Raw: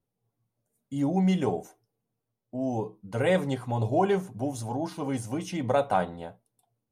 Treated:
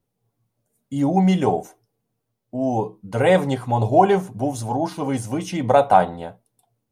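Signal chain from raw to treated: dynamic bell 790 Hz, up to +6 dB, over -38 dBFS, Q 2; trim +6.5 dB

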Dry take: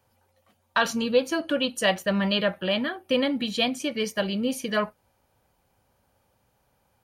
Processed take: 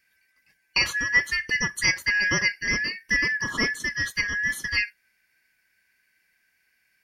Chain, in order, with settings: four frequency bands reordered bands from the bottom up 3142; 1.93–2.52 s: peaking EQ 640 Hz +6.5 dB 1.3 oct

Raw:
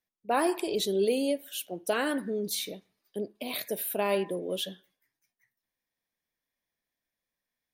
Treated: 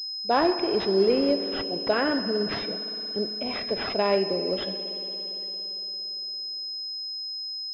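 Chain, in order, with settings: spring tank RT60 4 s, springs 57 ms, chirp 65 ms, DRR 9.5 dB; class-D stage that switches slowly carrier 5.1 kHz; trim +4.5 dB

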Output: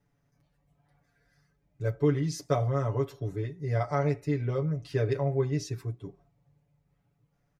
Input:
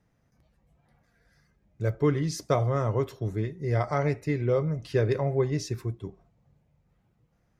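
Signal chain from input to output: comb 7 ms, depth 92%; trim -6 dB

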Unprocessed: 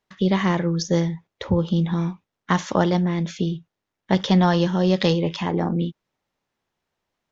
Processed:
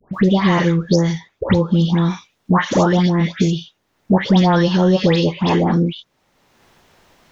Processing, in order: phase dispersion highs, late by 142 ms, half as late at 1.5 kHz; three bands compressed up and down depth 70%; trim +5.5 dB

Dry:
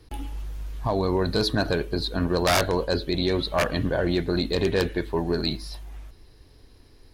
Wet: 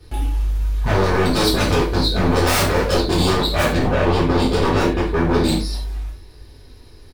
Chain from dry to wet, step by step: dynamic bell 220 Hz, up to +6 dB, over -36 dBFS, Q 0.79; wavefolder -20 dBFS; 3.68–5.48 s: treble shelf 5.5 kHz -9.5 dB; frequency-shifting echo 207 ms, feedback 33%, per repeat +31 Hz, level -23 dB; gated-style reverb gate 130 ms falling, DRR -7.5 dB

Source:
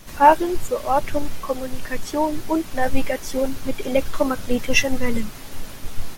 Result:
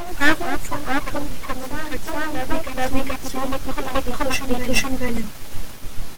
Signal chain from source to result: full-wave rectifier; reverse echo 429 ms -4.5 dB

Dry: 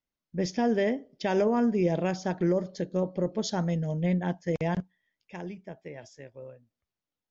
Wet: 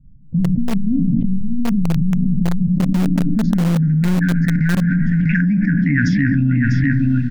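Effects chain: one-sided wavefolder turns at -22 dBFS; recorder AGC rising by 5.8 dB/s; peak limiter -24 dBFS, peak gain reduction 7.5 dB; on a send at -12 dB: reverberation RT60 1.4 s, pre-delay 6 ms; on the sum: FFT band-reject 300–1400 Hz; low-pass sweep 130 Hz -> 1.5 kHz, 2.67–3.98 s; graphic EQ 125/250/500/1000/2000/4000 Hz -4/+6/+5/-9/+4/+4 dB; touch-sensitive phaser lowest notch 400 Hz, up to 3.1 kHz, full sweep at -36.5 dBFS; bass shelf 90 Hz +6.5 dB; delay 648 ms -16 dB; in parallel at -9 dB: bit crusher 4-bit; on the sum: level flattener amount 100%; trim +4.5 dB

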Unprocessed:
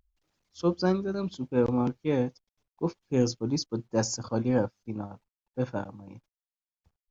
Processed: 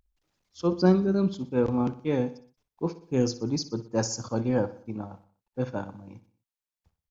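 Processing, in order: 0.72–1.30 s: peaking EQ 230 Hz +7 dB 2.3 oct; feedback delay 61 ms, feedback 49%, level -15.5 dB

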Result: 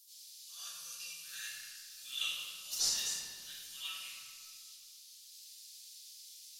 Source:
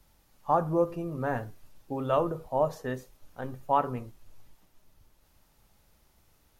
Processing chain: inverse Chebyshev high-pass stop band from 950 Hz, stop band 70 dB; in parallel at -12 dB: word length cut 8-bit, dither none; on the sum: reverberation RT60 2.0 s, pre-delay 72 ms, DRR -16.5 dB; trim +10 dB

